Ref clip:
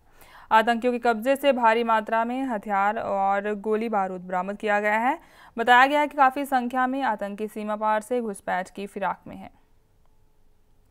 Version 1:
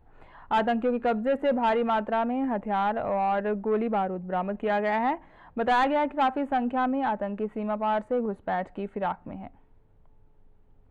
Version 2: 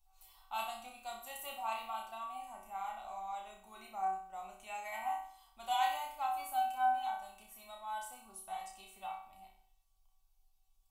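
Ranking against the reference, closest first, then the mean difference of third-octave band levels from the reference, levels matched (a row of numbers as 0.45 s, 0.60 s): 1, 2; 4.5 dB, 9.5 dB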